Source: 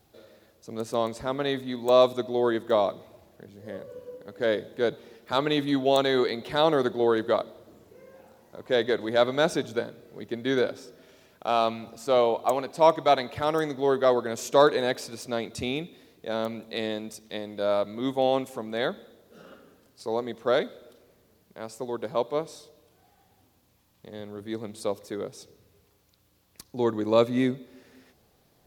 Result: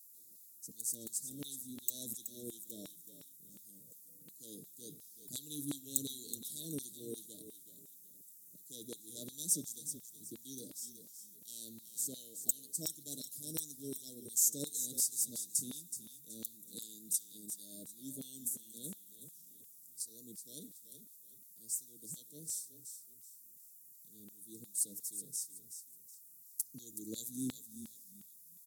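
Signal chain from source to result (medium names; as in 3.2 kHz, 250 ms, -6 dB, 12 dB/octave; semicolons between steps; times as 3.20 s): inverse Chebyshev band-stop 850–2300 Hz, stop band 80 dB; bass shelf 310 Hz +11.5 dB; comb 6.6 ms, depth 46%; frequency-shifting echo 374 ms, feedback 32%, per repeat -30 Hz, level -9.5 dB; LFO high-pass saw down 2.8 Hz 970–3700 Hz; high-pass 86 Hz; trim +13.5 dB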